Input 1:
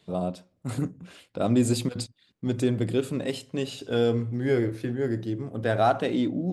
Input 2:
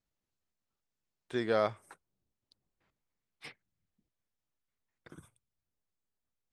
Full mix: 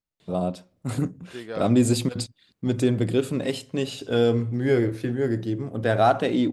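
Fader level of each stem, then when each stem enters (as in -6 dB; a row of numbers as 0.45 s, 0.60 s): +3.0 dB, -4.5 dB; 0.20 s, 0.00 s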